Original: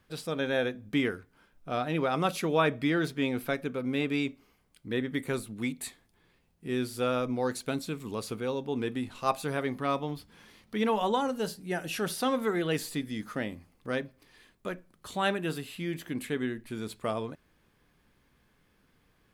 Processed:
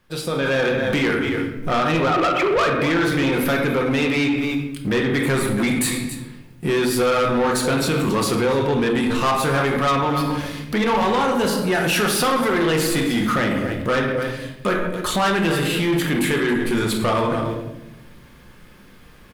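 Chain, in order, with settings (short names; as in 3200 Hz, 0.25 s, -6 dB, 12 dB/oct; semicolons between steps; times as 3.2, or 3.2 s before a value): 2.1–2.67 sine-wave speech; bell 740 Hz -4 dB 0.2 oct; notches 50/100/150/200/250/300/350 Hz; echo 0.276 s -17 dB; sample leveller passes 1; compressor 3:1, threshold -31 dBFS, peak gain reduction 10 dB; shoebox room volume 310 m³, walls mixed, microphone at 0.92 m; AGC gain up to 13.5 dB; dynamic EQ 1200 Hz, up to +5 dB, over -32 dBFS, Q 0.79; soft clip -15.5 dBFS, distortion -10 dB; limiter -21 dBFS, peak gain reduction 5.5 dB; gain +6 dB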